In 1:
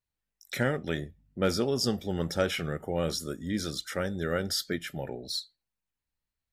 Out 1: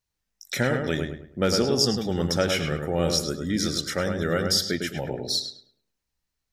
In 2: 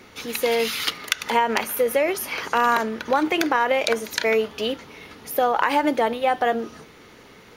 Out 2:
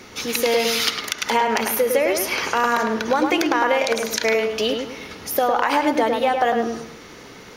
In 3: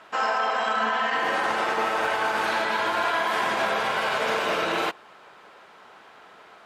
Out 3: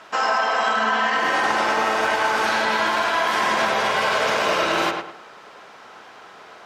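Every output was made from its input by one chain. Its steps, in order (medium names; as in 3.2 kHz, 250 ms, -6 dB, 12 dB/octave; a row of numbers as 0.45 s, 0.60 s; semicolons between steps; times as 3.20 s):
peaking EQ 5.7 kHz +6.5 dB 0.67 oct; compression 2:1, threshold -23 dBFS; filtered feedback delay 105 ms, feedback 34%, low-pass 2.8 kHz, level -4.5 dB; loudness maximiser +9.5 dB; trim -5 dB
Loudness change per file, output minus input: +6.0 LU, +2.0 LU, +4.5 LU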